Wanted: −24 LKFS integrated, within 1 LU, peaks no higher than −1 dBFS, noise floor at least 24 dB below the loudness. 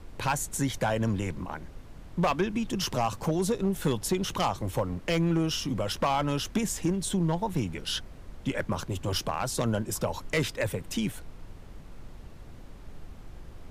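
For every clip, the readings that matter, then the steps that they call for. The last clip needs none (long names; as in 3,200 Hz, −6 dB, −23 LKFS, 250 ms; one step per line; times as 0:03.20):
share of clipped samples 0.6%; peaks flattened at −19.0 dBFS; background noise floor −46 dBFS; target noise floor −54 dBFS; integrated loudness −29.5 LKFS; sample peak −19.0 dBFS; target loudness −24.0 LKFS
→ clipped peaks rebuilt −19 dBFS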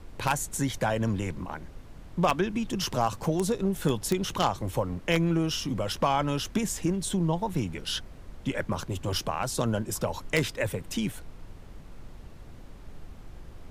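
share of clipped samples 0.0%; background noise floor −46 dBFS; target noise floor −53 dBFS
→ noise reduction from a noise print 7 dB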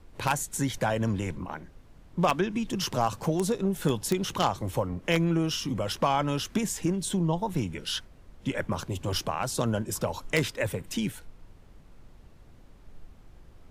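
background noise floor −53 dBFS; integrated loudness −29.0 LKFS; sample peak −10.0 dBFS; target loudness −24.0 LKFS
→ level +5 dB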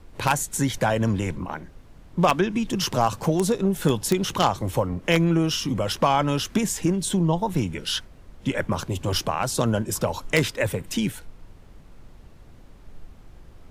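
integrated loudness −24.0 LKFS; sample peak −5.0 dBFS; background noise floor −48 dBFS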